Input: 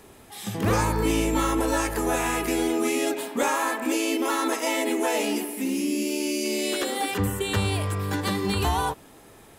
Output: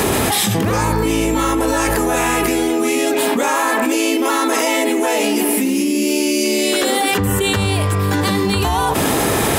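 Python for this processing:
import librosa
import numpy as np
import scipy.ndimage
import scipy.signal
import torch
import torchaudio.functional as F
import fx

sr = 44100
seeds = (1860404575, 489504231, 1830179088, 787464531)

y = scipy.signal.sosfilt(scipy.signal.butter(2, 56.0, 'highpass', fs=sr, output='sos'), x)
y = fx.env_flatten(y, sr, amount_pct=100)
y = F.gain(torch.from_numpy(y), 3.5).numpy()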